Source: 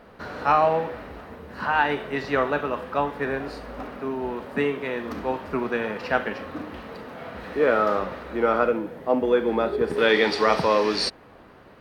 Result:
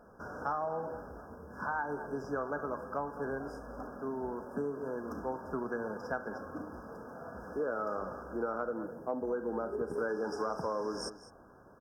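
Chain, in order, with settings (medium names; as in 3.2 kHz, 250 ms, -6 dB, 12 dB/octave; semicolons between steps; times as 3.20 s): FFT band-reject 1.7–4.9 kHz; on a send: delay 206 ms -17 dB; on the sum: compression, threshold -23 dBFS, peak gain reduction 8.5 dB; trim -8 dB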